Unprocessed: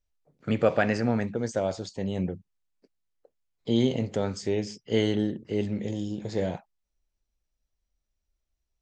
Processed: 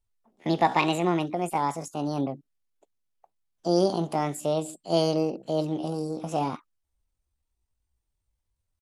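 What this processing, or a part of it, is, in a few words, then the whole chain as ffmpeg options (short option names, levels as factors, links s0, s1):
chipmunk voice: -af "asetrate=66075,aresample=44100,atempo=0.66742,volume=1.12"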